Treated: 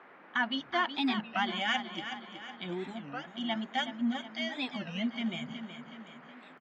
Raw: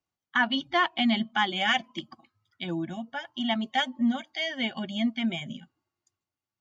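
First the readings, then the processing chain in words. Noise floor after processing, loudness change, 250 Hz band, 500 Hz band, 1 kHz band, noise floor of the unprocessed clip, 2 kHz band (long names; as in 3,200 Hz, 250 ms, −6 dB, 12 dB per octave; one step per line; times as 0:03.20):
−54 dBFS, −6.0 dB, −5.5 dB, −5.0 dB, −5.0 dB, below −85 dBFS, −5.5 dB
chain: noise in a band 190–1,900 Hz −49 dBFS
repeating echo 371 ms, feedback 51%, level −10 dB
wow of a warped record 33 1/3 rpm, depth 250 cents
level −6 dB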